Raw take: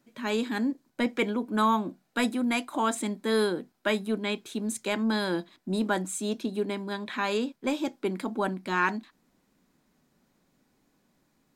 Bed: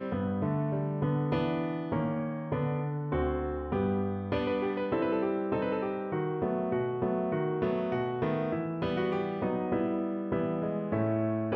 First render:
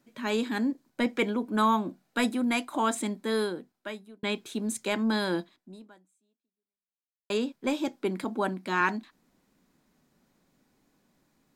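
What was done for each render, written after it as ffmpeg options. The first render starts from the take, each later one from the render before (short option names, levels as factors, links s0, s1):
-filter_complex "[0:a]asettb=1/sr,asplit=3[s0][s1][s2];[s0]atrim=end=8.244[s3];[s1]atrim=start=8.24:end=8.81,asetpts=PTS-STARTPTS,afade=t=in:d=0.004:c=qsin,afade=t=out:st=0.566:d=0.004:c=qsin,highpass=140[s4];[s2]atrim=start=8.806[s5];[s3][s4]acrossfade=d=0.004:c1=hsin:c2=qsin[s6];[s6][s5]acrossfade=d=0.004:c1=qsin:c2=hsin,asplit=3[s7][s8][s9];[s7]atrim=end=4.23,asetpts=PTS-STARTPTS,afade=t=out:st=3.02:d=1.21[s10];[s8]atrim=start=4.23:end=7.3,asetpts=PTS-STARTPTS,afade=t=in:d=0.004:c=hsin,afade=t=out:st=1.17:d=1.9:c=exp[s11];[s9]atrim=start=7.3,asetpts=PTS-STARTPTS,afade=t=in:d=0.004:c=hsin[s12];[s10][s11][s12]concat=n=3:v=0:a=1"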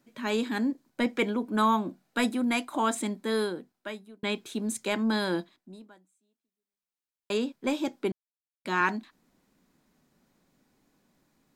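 -filter_complex "[0:a]asplit=3[s0][s1][s2];[s0]atrim=end=8.12,asetpts=PTS-STARTPTS,afade=t=out:st=8.116:d=0.004:c=hsin[s3];[s1]atrim=start=8.12:end=8.65,asetpts=PTS-STARTPTS,volume=0[s4];[s2]atrim=start=8.65,asetpts=PTS-STARTPTS,afade=t=in:d=0.004:c=hsin[s5];[s3][s4][s5]concat=n=3:v=0:a=1"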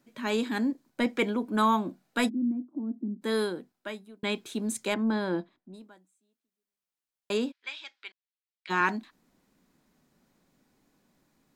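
-filter_complex "[0:a]asplit=3[s0][s1][s2];[s0]afade=t=out:st=2.28:d=0.02[s3];[s1]asuperpass=centerf=250:order=4:qfactor=1.9,afade=t=in:st=2.28:d=0.02,afade=t=out:st=3.21:d=0.02[s4];[s2]afade=t=in:st=3.21:d=0.02[s5];[s3][s4][s5]amix=inputs=3:normalize=0,asettb=1/sr,asplit=3[s6][s7][s8];[s6]atrim=end=4.944[s9];[s7]atrim=start=4.94:end=5.74,asetpts=PTS-STARTPTS,afade=t=in:d=0.004:c=qsin,afade=t=out:st=0.796:d=0.004:c=qsin,lowpass=f=1300:p=1[s10];[s8]atrim=start=5.736[s11];[s9][s10]acrossfade=d=0.004:c1=hsin:c2=qsin[s12];[s12][s11]acrossfade=d=0.004:c1=qsin:c2=hsin,asplit=3[s13][s14][s15];[s13]afade=t=out:st=7.51:d=0.02[s16];[s14]asuperpass=centerf=2800:order=4:qfactor=0.94,afade=t=in:st=7.51:d=0.02,afade=t=out:st=8.69:d=0.02[s17];[s15]afade=t=in:st=8.69:d=0.02[s18];[s16][s17][s18]amix=inputs=3:normalize=0"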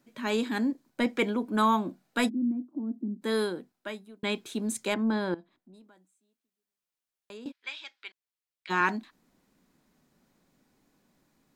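-filter_complex "[0:a]asettb=1/sr,asplit=3[s0][s1][s2];[s0]atrim=end=5.344[s3];[s1]atrim=start=5.34:end=7.46,asetpts=PTS-STARTPTS,afade=t=in:d=0.004:c=qsin,afade=t=out:st=2.116:d=0.004:c=qsin,acompressor=threshold=0.00158:ratio=2:attack=3.2:release=140:knee=1:detection=peak[s4];[s2]atrim=start=7.456[s5];[s3][s4]acrossfade=d=0.004:c1=hsin:c2=qsin[s6];[s6][s5]acrossfade=d=0.004:c1=qsin:c2=hsin"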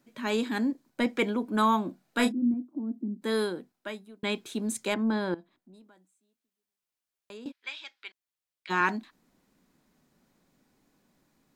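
-filter_complex "[0:a]asettb=1/sr,asplit=3[s0][s1][s2];[s0]atrim=end=2.054[s3];[s1]atrim=start=2.05:end=2.54,asetpts=PTS-STARTPTS,afade=t=in:d=0.004:c=qsin,afade=t=out:st=0.486:d=0.004:c=qsin,asplit=2[s4][s5];[s5]adelay=29,volume=0.447[s6];[s4][s6]amix=inputs=2:normalize=0,atrim=end_sample=21609[s7];[s2]atrim=start=2.536[s8];[s3][s7]acrossfade=d=0.004:c1=hsin:c2=qsin[s9];[s9][s8]acrossfade=d=0.004:c1=qsin:c2=hsin"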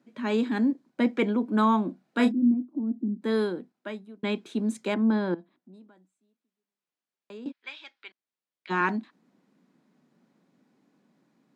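-af "highpass=f=180:w=0.5412,highpass=f=180:w=1.3066,aemphasis=mode=reproduction:type=bsi"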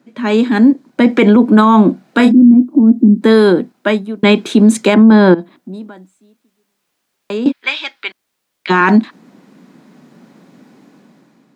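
-af "dynaudnorm=f=240:g=7:m=3.35,alimiter=level_in=4.22:limit=0.891:release=50:level=0:latency=1"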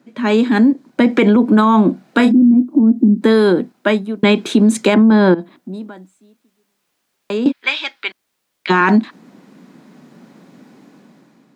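-af "acompressor=threshold=0.355:ratio=2.5"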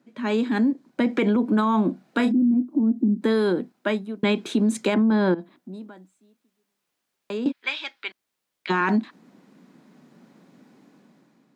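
-af "volume=0.335"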